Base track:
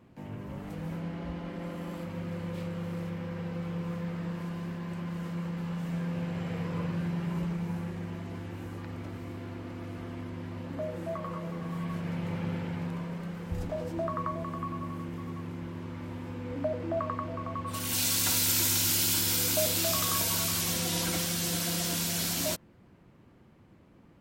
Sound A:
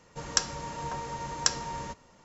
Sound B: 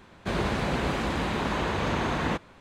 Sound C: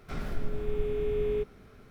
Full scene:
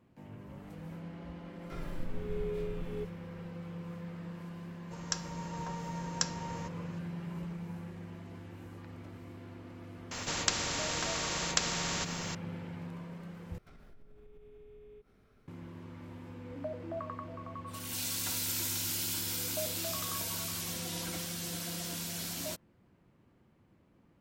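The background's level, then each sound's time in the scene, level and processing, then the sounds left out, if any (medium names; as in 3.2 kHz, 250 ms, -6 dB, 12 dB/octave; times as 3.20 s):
base track -8 dB
1.61 s: add C -4 dB + endless flanger 2.4 ms -1.2 Hz
4.75 s: add A -10.5 dB + level rider
10.11 s: add A -5 dB + spectrum-flattening compressor 4:1
13.58 s: replace with C -12 dB + compression 4:1, threshold -41 dBFS
not used: B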